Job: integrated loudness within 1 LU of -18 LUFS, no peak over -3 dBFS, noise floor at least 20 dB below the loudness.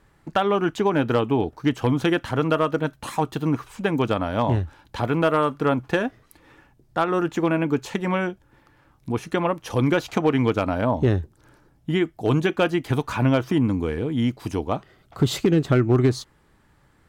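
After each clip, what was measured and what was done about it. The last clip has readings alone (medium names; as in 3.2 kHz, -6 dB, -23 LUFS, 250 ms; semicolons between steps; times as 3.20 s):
clipped samples 0.3%; clipping level -11.0 dBFS; loudness -23.0 LUFS; peak level -11.0 dBFS; loudness target -18.0 LUFS
-> clip repair -11 dBFS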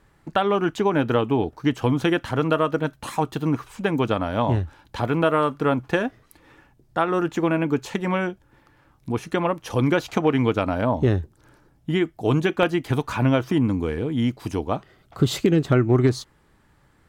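clipped samples 0.0%; loudness -23.0 LUFS; peak level -3.0 dBFS; loudness target -18.0 LUFS
-> trim +5 dB; peak limiter -3 dBFS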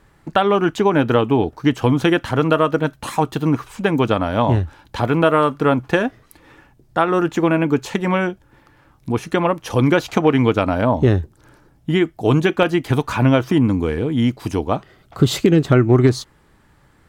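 loudness -18.0 LUFS; peak level -3.0 dBFS; noise floor -55 dBFS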